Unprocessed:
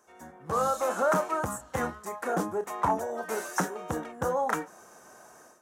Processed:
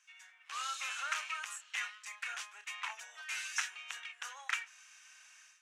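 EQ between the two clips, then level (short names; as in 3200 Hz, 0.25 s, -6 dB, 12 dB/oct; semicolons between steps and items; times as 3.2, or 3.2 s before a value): ladder high-pass 2300 Hz, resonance 60%; air absorption 86 m; +14.0 dB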